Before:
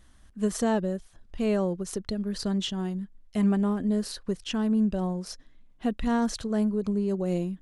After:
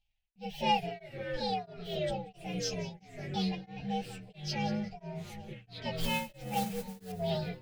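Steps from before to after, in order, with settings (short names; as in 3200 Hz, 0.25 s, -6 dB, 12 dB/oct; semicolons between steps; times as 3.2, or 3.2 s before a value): inharmonic rescaling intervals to 124%; gate with hold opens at -47 dBFS; EQ curve 120 Hz 0 dB, 310 Hz -19 dB, 830 Hz +6 dB, 1200 Hz -25 dB, 2400 Hz +7 dB, 4000 Hz +13 dB, 10000 Hz -17 dB; 5.95–7.12 modulation noise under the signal 12 dB; echoes that change speed 88 ms, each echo -4 st, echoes 3, each echo -6 dB; split-band echo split 1200 Hz, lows 0.741 s, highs 0.185 s, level -15 dB; beating tremolo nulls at 1.5 Hz; gain +1 dB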